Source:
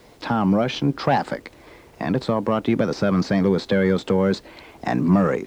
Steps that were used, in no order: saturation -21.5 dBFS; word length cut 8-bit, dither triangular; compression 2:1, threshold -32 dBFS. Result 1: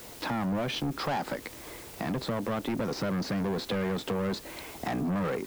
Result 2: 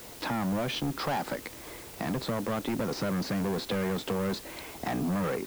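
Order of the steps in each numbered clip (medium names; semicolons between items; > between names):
word length cut > saturation > compression; saturation > compression > word length cut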